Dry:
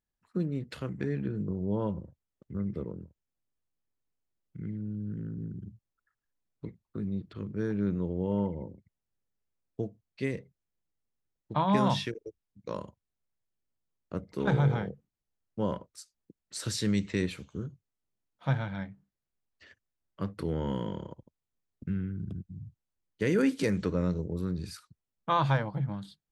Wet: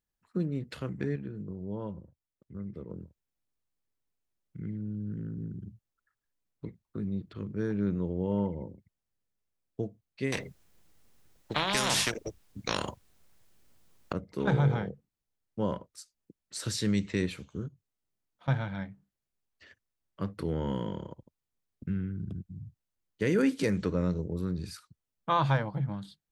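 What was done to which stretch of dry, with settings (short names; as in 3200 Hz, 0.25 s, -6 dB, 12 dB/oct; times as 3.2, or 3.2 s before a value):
1.16–2.9 gain -6.5 dB
10.32–14.13 spectral compressor 4:1
17.68–18.48 compressor 4:1, threshold -54 dBFS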